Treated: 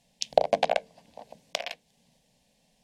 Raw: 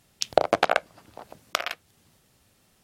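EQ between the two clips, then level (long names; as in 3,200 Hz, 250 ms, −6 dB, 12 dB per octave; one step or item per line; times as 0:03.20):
high-frequency loss of the air 51 metres
mains-hum notches 50/100/150/200/250/300/350/400/450 Hz
phaser with its sweep stopped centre 350 Hz, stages 6
0.0 dB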